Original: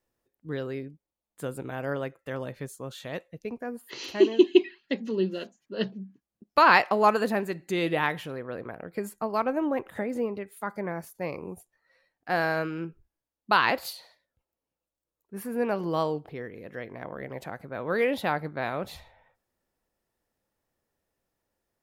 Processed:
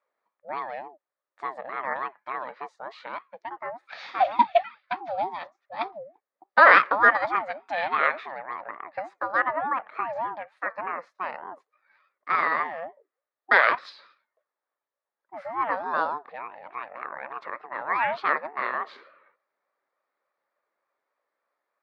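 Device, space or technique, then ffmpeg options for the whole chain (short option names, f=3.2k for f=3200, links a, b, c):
voice changer toy: -af "aeval=exprs='val(0)*sin(2*PI*460*n/s+460*0.3/3.4*sin(2*PI*3.4*n/s))':c=same,highpass=520,equalizer=f=570:t=q:w=4:g=7,equalizer=f=1.2k:t=q:w=4:g=7,equalizer=f=1.8k:t=q:w=4:g=9,equalizer=f=3k:t=q:w=4:g=-8,lowpass=f=4k:w=0.5412,lowpass=f=4k:w=1.3066,volume=2.5dB"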